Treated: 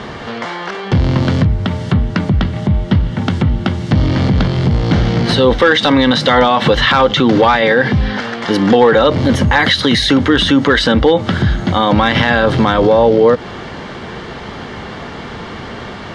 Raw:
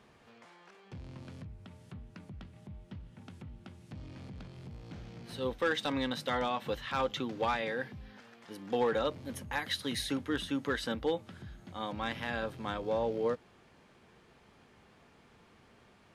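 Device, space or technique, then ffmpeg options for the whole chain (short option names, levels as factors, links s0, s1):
loud club master: -af "equalizer=f=6500:w=0.58:g=5,bandreject=f=2500:w=7,acompressor=threshold=0.02:ratio=2.5,asoftclip=type=hard:threshold=0.0447,alimiter=level_in=56.2:limit=0.891:release=50:level=0:latency=1,lowpass=3700,volume=0.891"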